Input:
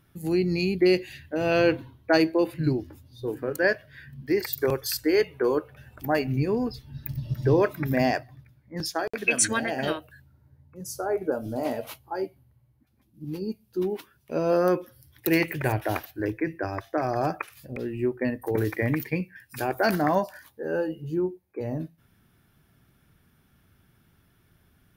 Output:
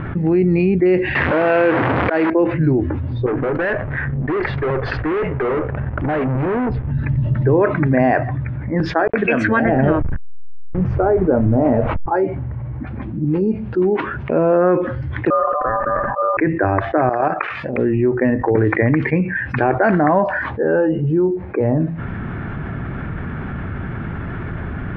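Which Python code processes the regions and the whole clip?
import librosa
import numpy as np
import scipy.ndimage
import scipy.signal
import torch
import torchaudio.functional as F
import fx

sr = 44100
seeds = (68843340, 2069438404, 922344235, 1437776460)

y = fx.chain(x, sr, fx.delta_mod(bps=32000, step_db=-21.0),
    fx.highpass(hz=390.0, slope=6),
    fx.auto_swell(attack_ms=197.0), at=(1.15, 2.3))
y = fx.chain(y, sr, fx.backlash(play_db=-45.0),
    fx.lowpass(hz=4200.0, slope=12),
    fx.tube_stage(drive_db=37.0, bias=0.35), at=(3.26, 6.91))
y = fx.chain(y, sr, fx.delta_hold(step_db=-42.0),
    fx.riaa(side='playback'), at=(9.65, 12.06))
y = fx.chain(y, sr, fx.formant_cascade(vowel='u'),
    fx.ring_mod(carrier_hz=890.0),
    fx.sustainer(db_per_s=71.0), at=(15.3, 16.37))
y = fx.chain(y, sr, fx.highpass(hz=570.0, slope=6),
    fx.high_shelf(hz=4200.0, db=5.0),
    fx.level_steps(step_db=14), at=(17.09, 17.78))
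y = scipy.signal.sosfilt(scipy.signal.butter(4, 2000.0, 'lowpass', fs=sr, output='sos'), y)
y = fx.env_flatten(y, sr, amount_pct=70)
y = F.gain(torch.from_numpy(y), 4.5).numpy()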